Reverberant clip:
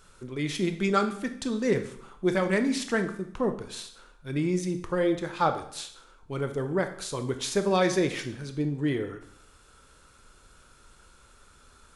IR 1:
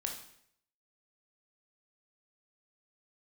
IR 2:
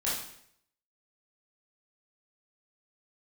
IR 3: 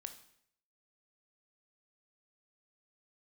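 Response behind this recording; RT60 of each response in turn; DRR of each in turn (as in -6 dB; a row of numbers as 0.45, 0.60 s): 3; 0.65, 0.65, 0.70 s; 1.5, -8.0, 7.5 dB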